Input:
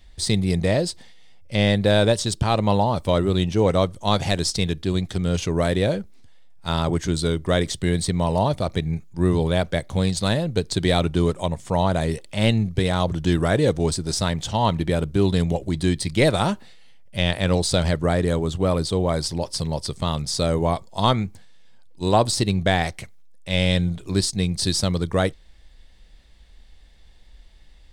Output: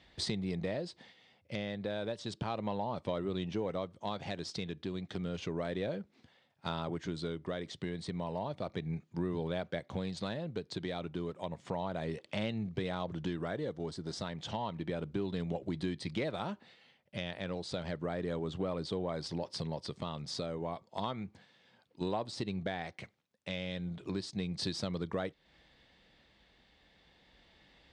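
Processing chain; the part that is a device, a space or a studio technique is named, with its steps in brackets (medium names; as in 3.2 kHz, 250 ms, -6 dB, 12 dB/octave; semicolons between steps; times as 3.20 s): AM radio (band-pass 150–3700 Hz; compression 5:1, threshold -33 dBFS, peak gain reduction 18.5 dB; saturation -18.5 dBFS, distortion -28 dB; tremolo 0.32 Hz, depth 29%); 13.51–14.23 s: band-stop 2.5 kHz, Q 6.9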